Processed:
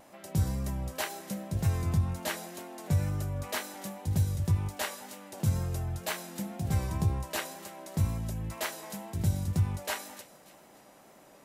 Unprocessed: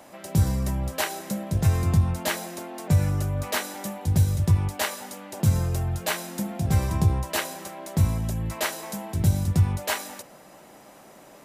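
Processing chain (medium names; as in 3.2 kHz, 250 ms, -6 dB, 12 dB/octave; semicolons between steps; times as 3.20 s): vibrato 2 Hz 32 cents; on a send: feedback echo behind a high-pass 291 ms, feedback 45%, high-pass 2.4 kHz, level -16.5 dB; on the sum: trim -7 dB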